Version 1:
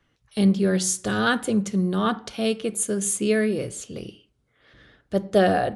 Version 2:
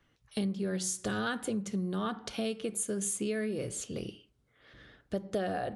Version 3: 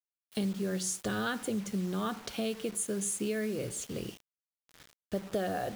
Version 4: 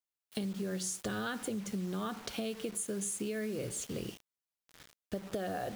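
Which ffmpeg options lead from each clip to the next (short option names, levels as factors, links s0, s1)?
-af "acompressor=threshold=0.0398:ratio=6,volume=0.75"
-af "acrusher=bits=7:mix=0:aa=0.000001"
-af "acompressor=threshold=0.0224:ratio=6"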